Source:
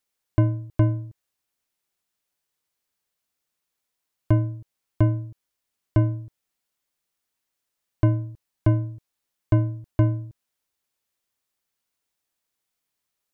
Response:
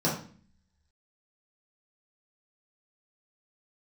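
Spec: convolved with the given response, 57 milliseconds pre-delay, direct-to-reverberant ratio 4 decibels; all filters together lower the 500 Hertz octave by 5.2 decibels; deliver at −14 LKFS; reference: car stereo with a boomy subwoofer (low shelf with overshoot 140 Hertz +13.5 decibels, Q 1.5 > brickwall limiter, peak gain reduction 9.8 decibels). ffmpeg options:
-filter_complex "[0:a]equalizer=frequency=500:width_type=o:gain=-6.5,asplit=2[link_01][link_02];[1:a]atrim=start_sample=2205,adelay=57[link_03];[link_02][link_03]afir=irnorm=-1:irlink=0,volume=-15dB[link_04];[link_01][link_04]amix=inputs=2:normalize=0,lowshelf=frequency=140:width_type=q:width=1.5:gain=13.5,volume=4.5dB,alimiter=limit=-3.5dB:level=0:latency=1"

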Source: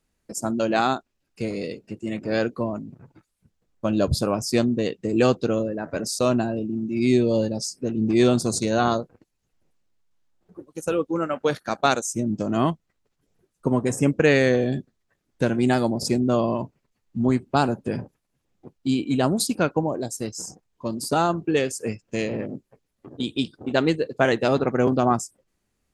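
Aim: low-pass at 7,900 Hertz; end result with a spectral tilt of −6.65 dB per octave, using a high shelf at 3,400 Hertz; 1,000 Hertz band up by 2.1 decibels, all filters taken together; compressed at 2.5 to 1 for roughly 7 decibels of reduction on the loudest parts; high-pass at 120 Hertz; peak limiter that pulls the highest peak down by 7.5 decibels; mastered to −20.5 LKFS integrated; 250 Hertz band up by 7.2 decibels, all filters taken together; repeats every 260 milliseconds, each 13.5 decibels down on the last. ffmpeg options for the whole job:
ffmpeg -i in.wav -af "highpass=120,lowpass=7900,equalizer=frequency=250:width_type=o:gain=8.5,equalizer=frequency=1000:width_type=o:gain=3,highshelf=frequency=3400:gain=-7.5,acompressor=threshold=-20dB:ratio=2.5,alimiter=limit=-14.5dB:level=0:latency=1,aecho=1:1:260|520:0.211|0.0444,volume=5dB" out.wav

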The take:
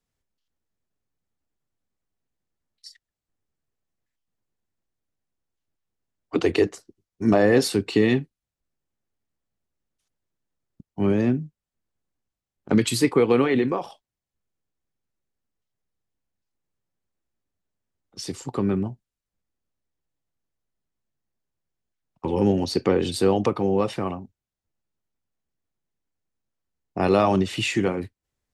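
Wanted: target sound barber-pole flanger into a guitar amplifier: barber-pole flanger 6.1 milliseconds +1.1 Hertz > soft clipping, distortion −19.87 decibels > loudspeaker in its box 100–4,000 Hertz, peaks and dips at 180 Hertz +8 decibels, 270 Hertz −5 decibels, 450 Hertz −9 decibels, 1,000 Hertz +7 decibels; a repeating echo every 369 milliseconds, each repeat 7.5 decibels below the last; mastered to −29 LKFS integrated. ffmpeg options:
ffmpeg -i in.wav -filter_complex "[0:a]aecho=1:1:369|738|1107|1476|1845:0.422|0.177|0.0744|0.0312|0.0131,asplit=2[link_01][link_02];[link_02]adelay=6.1,afreqshift=1.1[link_03];[link_01][link_03]amix=inputs=2:normalize=1,asoftclip=threshold=-12dB,highpass=100,equalizer=frequency=180:width_type=q:width=4:gain=8,equalizer=frequency=270:width_type=q:width=4:gain=-5,equalizer=frequency=450:width_type=q:width=4:gain=-9,equalizer=frequency=1000:width_type=q:width=4:gain=7,lowpass=frequency=4000:width=0.5412,lowpass=frequency=4000:width=1.3066,volume=-1.5dB" out.wav

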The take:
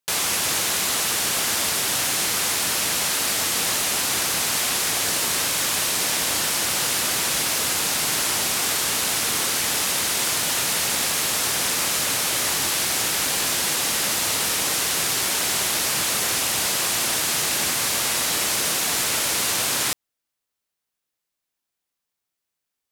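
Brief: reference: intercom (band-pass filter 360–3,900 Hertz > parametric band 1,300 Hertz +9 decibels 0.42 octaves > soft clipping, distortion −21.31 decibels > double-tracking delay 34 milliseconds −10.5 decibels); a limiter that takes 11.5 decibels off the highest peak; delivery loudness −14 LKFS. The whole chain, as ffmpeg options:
ffmpeg -i in.wav -filter_complex "[0:a]alimiter=limit=-20.5dB:level=0:latency=1,highpass=360,lowpass=3900,equalizer=frequency=1300:width_type=o:width=0.42:gain=9,asoftclip=threshold=-24.5dB,asplit=2[link_01][link_02];[link_02]adelay=34,volume=-10.5dB[link_03];[link_01][link_03]amix=inputs=2:normalize=0,volume=18dB" out.wav

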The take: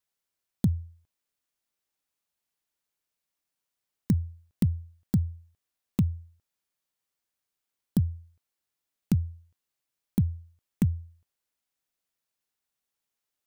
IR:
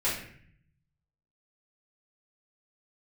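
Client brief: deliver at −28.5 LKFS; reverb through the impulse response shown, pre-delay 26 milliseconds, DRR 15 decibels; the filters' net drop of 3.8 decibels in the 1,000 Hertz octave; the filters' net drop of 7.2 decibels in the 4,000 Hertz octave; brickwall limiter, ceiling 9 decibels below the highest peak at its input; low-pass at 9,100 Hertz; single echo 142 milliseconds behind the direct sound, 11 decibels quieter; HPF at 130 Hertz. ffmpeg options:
-filter_complex "[0:a]highpass=130,lowpass=9100,equalizer=frequency=1000:width_type=o:gain=-4.5,equalizer=frequency=4000:width_type=o:gain=-9,alimiter=limit=-24dB:level=0:latency=1,aecho=1:1:142:0.282,asplit=2[link_01][link_02];[1:a]atrim=start_sample=2205,adelay=26[link_03];[link_02][link_03]afir=irnorm=-1:irlink=0,volume=-24.5dB[link_04];[link_01][link_04]amix=inputs=2:normalize=0,volume=10dB"

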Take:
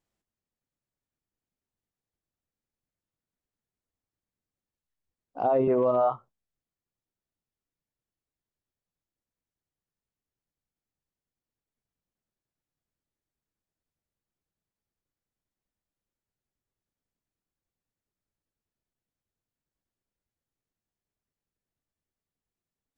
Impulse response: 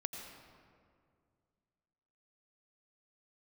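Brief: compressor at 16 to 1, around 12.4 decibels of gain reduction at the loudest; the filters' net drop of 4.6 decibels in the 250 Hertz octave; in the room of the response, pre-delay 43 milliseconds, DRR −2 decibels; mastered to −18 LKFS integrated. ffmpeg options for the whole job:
-filter_complex "[0:a]equalizer=frequency=250:width_type=o:gain=-6,acompressor=threshold=-33dB:ratio=16,asplit=2[link_01][link_02];[1:a]atrim=start_sample=2205,adelay=43[link_03];[link_02][link_03]afir=irnorm=-1:irlink=0,volume=2.5dB[link_04];[link_01][link_04]amix=inputs=2:normalize=0,volume=16.5dB"

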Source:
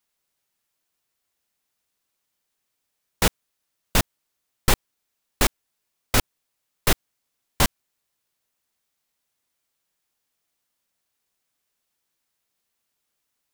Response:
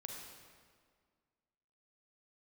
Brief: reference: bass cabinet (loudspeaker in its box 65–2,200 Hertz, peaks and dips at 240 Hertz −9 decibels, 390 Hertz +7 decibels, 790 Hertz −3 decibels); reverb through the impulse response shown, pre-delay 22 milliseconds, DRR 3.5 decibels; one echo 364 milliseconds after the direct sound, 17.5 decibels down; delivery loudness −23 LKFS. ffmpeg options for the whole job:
-filter_complex "[0:a]aecho=1:1:364:0.133,asplit=2[link_01][link_02];[1:a]atrim=start_sample=2205,adelay=22[link_03];[link_02][link_03]afir=irnorm=-1:irlink=0,volume=-0.5dB[link_04];[link_01][link_04]amix=inputs=2:normalize=0,highpass=frequency=65:width=0.5412,highpass=frequency=65:width=1.3066,equalizer=frequency=240:width_type=q:width=4:gain=-9,equalizer=frequency=390:width_type=q:width=4:gain=7,equalizer=frequency=790:width_type=q:width=4:gain=-3,lowpass=frequency=2200:width=0.5412,lowpass=frequency=2200:width=1.3066,volume=6dB"

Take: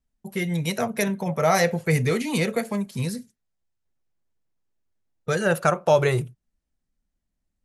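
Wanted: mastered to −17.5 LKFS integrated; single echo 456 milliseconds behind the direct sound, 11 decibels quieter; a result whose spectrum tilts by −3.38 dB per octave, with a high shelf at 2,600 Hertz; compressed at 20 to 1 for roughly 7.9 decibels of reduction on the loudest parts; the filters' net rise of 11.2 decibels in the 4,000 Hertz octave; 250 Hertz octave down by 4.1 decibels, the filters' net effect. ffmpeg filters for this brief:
ffmpeg -i in.wav -af "equalizer=frequency=250:width_type=o:gain=-7,highshelf=frequency=2600:gain=6,equalizer=frequency=4000:width_type=o:gain=8.5,acompressor=threshold=-20dB:ratio=20,aecho=1:1:456:0.282,volume=8.5dB" out.wav

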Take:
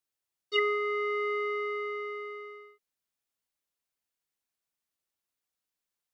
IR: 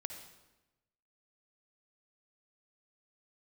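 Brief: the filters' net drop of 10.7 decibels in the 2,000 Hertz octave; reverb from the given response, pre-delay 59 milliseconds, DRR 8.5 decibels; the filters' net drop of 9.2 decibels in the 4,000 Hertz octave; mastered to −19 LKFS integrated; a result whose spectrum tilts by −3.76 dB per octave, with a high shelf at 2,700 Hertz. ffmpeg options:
-filter_complex "[0:a]equalizer=frequency=2000:width_type=o:gain=-8,highshelf=frequency=2700:gain=-4,equalizer=frequency=4000:width_type=o:gain=-6,asplit=2[link_01][link_02];[1:a]atrim=start_sample=2205,adelay=59[link_03];[link_02][link_03]afir=irnorm=-1:irlink=0,volume=-7dB[link_04];[link_01][link_04]amix=inputs=2:normalize=0,volume=18dB"

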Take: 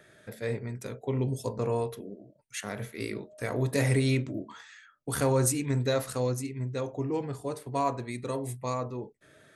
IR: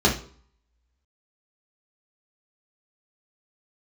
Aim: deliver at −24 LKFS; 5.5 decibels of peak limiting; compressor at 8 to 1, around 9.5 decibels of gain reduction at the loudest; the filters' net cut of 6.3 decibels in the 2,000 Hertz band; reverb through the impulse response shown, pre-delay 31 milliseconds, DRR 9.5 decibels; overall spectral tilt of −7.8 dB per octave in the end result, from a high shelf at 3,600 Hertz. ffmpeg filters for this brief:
-filter_complex "[0:a]equalizer=frequency=2000:width_type=o:gain=-5.5,highshelf=frequency=3600:gain=-8,acompressor=threshold=-32dB:ratio=8,alimiter=level_in=4dB:limit=-24dB:level=0:latency=1,volume=-4dB,asplit=2[link_01][link_02];[1:a]atrim=start_sample=2205,adelay=31[link_03];[link_02][link_03]afir=irnorm=-1:irlink=0,volume=-27dB[link_04];[link_01][link_04]amix=inputs=2:normalize=0,volume=13dB"

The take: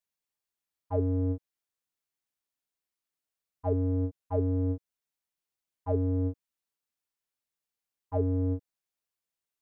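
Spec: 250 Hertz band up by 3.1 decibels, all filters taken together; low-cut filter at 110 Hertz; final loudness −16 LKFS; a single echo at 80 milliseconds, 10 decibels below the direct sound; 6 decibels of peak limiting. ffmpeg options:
ffmpeg -i in.wav -af "highpass=110,equalizer=frequency=250:width_type=o:gain=3.5,alimiter=limit=-23dB:level=0:latency=1,aecho=1:1:80:0.316,volume=15dB" out.wav

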